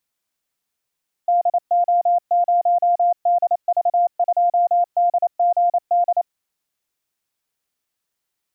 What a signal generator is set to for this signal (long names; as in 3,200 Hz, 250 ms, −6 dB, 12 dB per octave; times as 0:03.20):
Morse code "DO0DV2DGD" 28 words per minute 700 Hz −13 dBFS